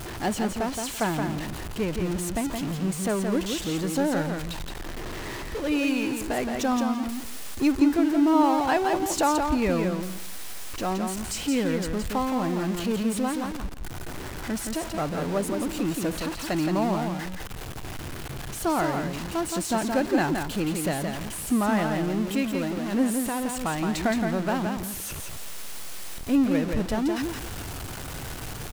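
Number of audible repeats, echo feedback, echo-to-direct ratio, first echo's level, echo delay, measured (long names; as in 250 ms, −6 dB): 2, 16%, −5.0 dB, −5.0 dB, 170 ms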